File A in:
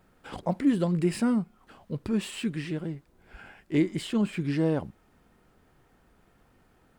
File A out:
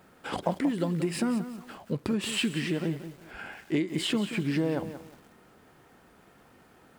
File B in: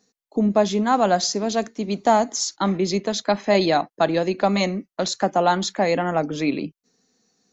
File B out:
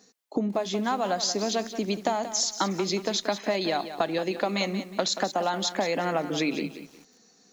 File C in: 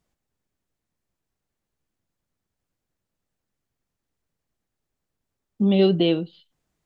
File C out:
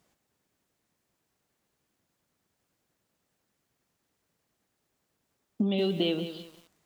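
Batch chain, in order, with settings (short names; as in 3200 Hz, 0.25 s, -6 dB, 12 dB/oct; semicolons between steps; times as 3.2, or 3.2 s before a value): dynamic EQ 3200 Hz, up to +4 dB, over -40 dBFS, Q 1; compressor 16:1, threshold -30 dBFS; HPF 52 Hz 6 dB/oct; low shelf 96 Hz -11.5 dB; lo-fi delay 0.181 s, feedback 35%, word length 9-bit, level -11 dB; gain +7.5 dB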